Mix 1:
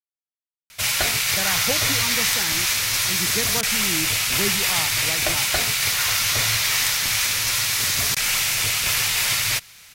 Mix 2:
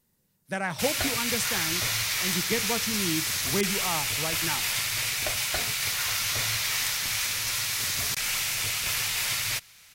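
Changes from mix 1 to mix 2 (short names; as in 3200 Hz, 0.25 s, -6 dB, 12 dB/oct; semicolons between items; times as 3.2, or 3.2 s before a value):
speech: entry -0.85 s; background -7.0 dB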